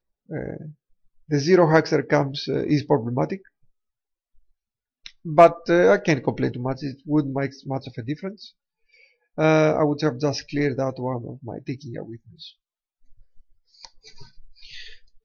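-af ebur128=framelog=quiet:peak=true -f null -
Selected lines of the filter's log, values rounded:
Integrated loudness:
  I:         -21.9 LUFS
  Threshold: -33.9 LUFS
Loudness range:
  LRA:        12.8 LU
  Threshold: -44.1 LUFS
  LRA low:   -33.9 LUFS
  LRA high:  -21.1 LUFS
True peak:
  Peak:       -2.7 dBFS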